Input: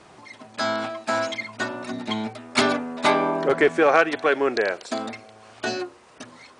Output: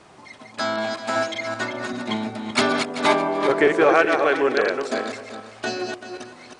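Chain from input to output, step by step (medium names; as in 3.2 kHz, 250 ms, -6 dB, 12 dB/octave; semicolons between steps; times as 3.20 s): backward echo that repeats 193 ms, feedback 41%, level -5 dB; repeats whose band climbs or falls 125 ms, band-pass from 340 Hz, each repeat 0.7 oct, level -11 dB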